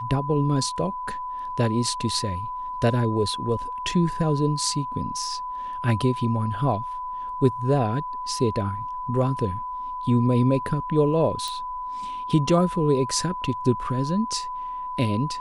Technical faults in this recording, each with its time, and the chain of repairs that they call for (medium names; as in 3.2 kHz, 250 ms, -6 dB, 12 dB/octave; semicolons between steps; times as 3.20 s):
whine 1 kHz -29 dBFS
11.48 s: pop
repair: de-click; band-stop 1 kHz, Q 30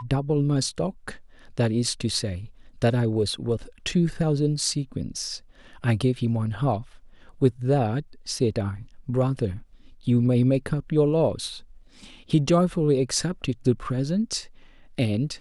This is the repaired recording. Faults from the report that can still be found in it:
11.48 s: pop